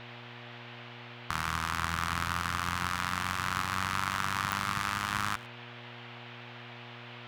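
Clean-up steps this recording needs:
click removal
hum removal 119.9 Hz, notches 8
noise reduction from a noise print 30 dB
echo removal 106 ms −20.5 dB

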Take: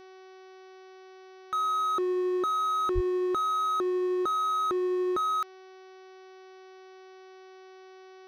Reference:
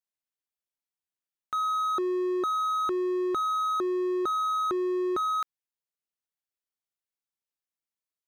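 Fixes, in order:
hum removal 376.2 Hz, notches 16
0:02.94–0:03.06: high-pass filter 140 Hz 24 dB per octave

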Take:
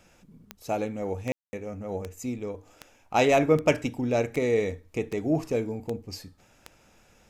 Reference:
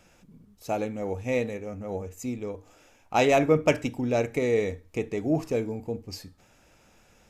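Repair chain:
click removal
ambience match 0:01.32–0:01.53

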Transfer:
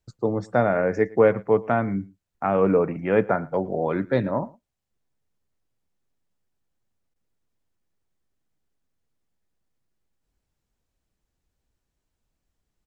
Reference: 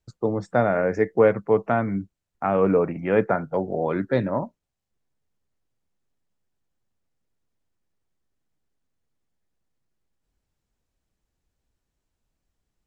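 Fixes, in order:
repair the gap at 0:07.14, 15 ms
echo removal 111 ms −23 dB

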